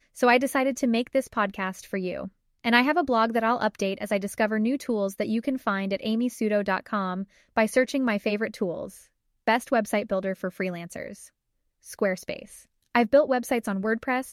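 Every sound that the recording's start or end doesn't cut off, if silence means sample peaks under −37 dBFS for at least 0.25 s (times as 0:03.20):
0:02.64–0:07.24
0:07.56–0:08.97
0:09.48–0:11.26
0:11.87–0:12.58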